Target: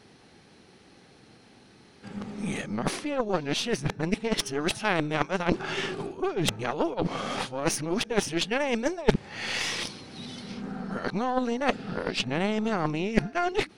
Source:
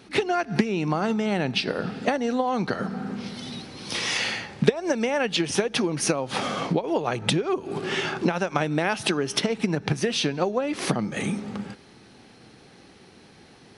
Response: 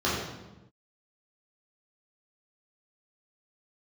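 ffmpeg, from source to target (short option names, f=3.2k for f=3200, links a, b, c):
-af "areverse,aeval=exprs='0.794*(cos(1*acos(clip(val(0)/0.794,-1,1)))-cos(1*PI/2))+0.224*(cos(4*acos(clip(val(0)/0.794,-1,1)))-cos(4*PI/2))':c=same,volume=-4dB"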